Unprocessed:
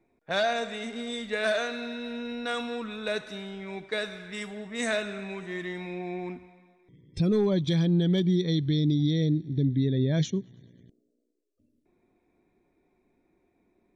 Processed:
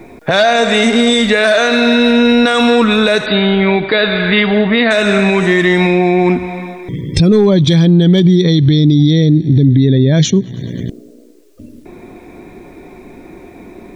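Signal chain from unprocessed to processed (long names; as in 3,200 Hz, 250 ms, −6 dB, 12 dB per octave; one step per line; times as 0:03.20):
downward compressor 2 to 1, threshold −48 dBFS, peak gain reduction 15 dB
0:03.26–0:04.91: linear-phase brick-wall low-pass 4,800 Hz
boost into a limiter +35.5 dB
level −1 dB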